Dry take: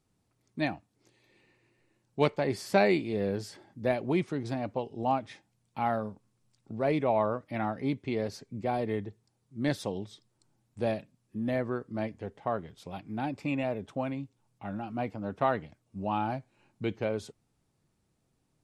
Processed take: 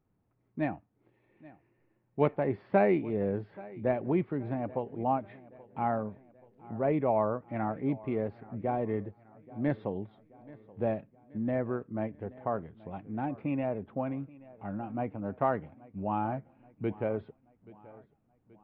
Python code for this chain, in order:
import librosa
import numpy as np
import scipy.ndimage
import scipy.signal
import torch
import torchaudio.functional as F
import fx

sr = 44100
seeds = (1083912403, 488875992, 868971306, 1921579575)

y = scipy.ndimage.gaussian_filter1d(x, 4.1, mode='constant')
y = fx.echo_feedback(y, sr, ms=829, feedback_pct=50, wet_db=-21)